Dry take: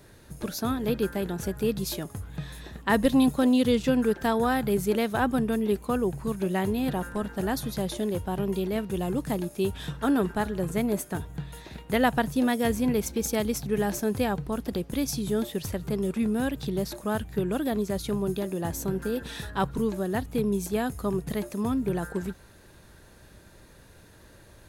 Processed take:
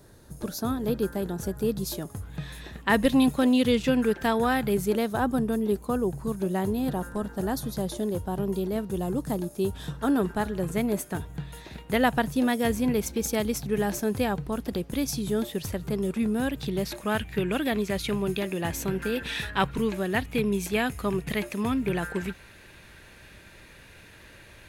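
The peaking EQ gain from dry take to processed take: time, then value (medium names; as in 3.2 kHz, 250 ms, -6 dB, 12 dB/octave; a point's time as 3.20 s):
peaking EQ 2.4 kHz 1.1 oct
1.95 s -7.5 dB
2.51 s +4.5 dB
4.61 s +4.5 dB
5.18 s -7.5 dB
9.67 s -7.5 dB
10.69 s +1.5 dB
16.40 s +1.5 dB
17.16 s +13.5 dB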